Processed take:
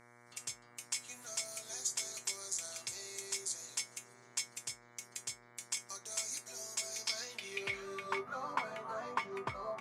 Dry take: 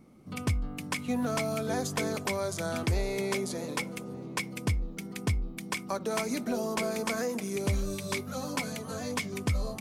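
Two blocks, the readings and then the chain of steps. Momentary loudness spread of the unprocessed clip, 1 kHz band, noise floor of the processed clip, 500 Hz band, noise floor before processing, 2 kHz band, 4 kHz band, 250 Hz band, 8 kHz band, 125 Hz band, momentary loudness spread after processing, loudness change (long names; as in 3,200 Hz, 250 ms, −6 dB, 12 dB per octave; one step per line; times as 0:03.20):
5 LU, −6.0 dB, −62 dBFS, −14.0 dB, −43 dBFS, −7.5 dB, −3.0 dB, −23.0 dB, +2.0 dB, −26.0 dB, 7 LU, −7.5 dB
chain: tuned comb filter 130 Hz, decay 0.15 s, harmonics odd, mix 80%
band-pass filter sweep 7,100 Hz → 1,100 Hz, 0:06.84–0:08.21
hum with harmonics 120 Hz, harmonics 19, −76 dBFS −1 dB per octave
level +14 dB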